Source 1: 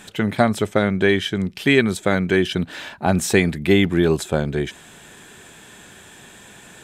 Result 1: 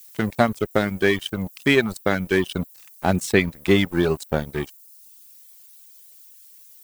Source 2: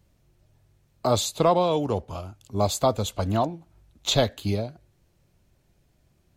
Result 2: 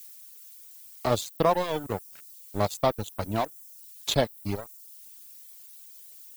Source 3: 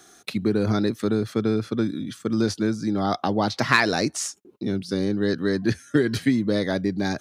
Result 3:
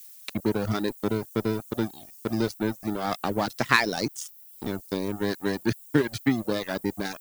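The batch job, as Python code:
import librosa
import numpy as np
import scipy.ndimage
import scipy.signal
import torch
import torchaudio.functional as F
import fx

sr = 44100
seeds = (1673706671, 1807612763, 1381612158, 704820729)

y = np.sign(x) * np.maximum(np.abs(x) - 10.0 ** (-28.5 / 20.0), 0.0)
y = fx.dmg_noise_colour(y, sr, seeds[0], colour='violet', level_db=-46.0)
y = fx.dereverb_blind(y, sr, rt60_s=0.82)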